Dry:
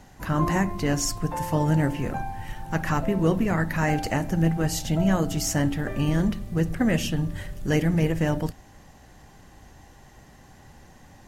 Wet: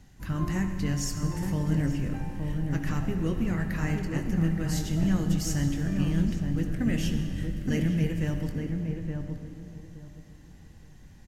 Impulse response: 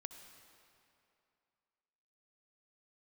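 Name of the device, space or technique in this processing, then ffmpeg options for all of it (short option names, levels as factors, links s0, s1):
swimming-pool hall: -filter_complex "[0:a]asplit=3[s0][s1][s2];[s0]afade=t=out:st=3.82:d=0.02[s3];[s1]agate=range=0.355:threshold=0.0631:ratio=16:detection=peak,afade=t=in:st=3.82:d=0.02,afade=t=out:st=4.24:d=0.02[s4];[s2]afade=t=in:st=4.24:d=0.02[s5];[s3][s4][s5]amix=inputs=3:normalize=0,equalizer=f=760:t=o:w=2.4:g=-14,asplit=2[s6][s7];[s7]adelay=22,volume=0.251[s8];[s6][s8]amix=inputs=2:normalize=0[s9];[1:a]atrim=start_sample=2205[s10];[s9][s10]afir=irnorm=-1:irlink=0,highshelf=f=4400:g=-7,asplit=2[s11][s12];[s12]adelay=870,lowpass=f=1100:p=1,volume=0.631,asplit=2[s13][s14];[s14]adelay=870,lowpass=f=1100:p=1,volume=0.23,asplit=2[s15][s16];[s16]adelay=870,lowpass=f=1100:p=1,volume=0.23[s17];[s11][s13][s15][s17]amix=inputs=4:normalize=0,volume=1.58"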